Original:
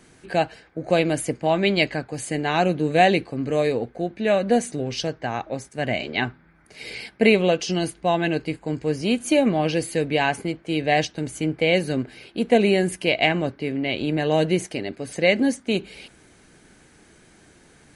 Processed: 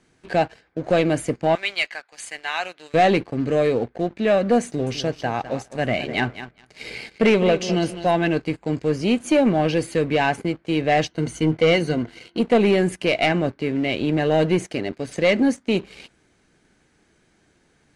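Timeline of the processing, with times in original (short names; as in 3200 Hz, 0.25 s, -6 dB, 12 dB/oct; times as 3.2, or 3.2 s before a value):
1.55–2.94 HPF 1300 Hz
4.66–8.23 feedback echo 0.205 s, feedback 23%, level -13 dB
11.11–12.41 ripple EQ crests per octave 1.9, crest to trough 10 dB
whole clip: sample leveller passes 2; LPF 7700 Hz 12 dB/oct; dynamic EQ 4800 Hz, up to -4 dB, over -33 dBFS, Q 0.72; gain -4.5 dB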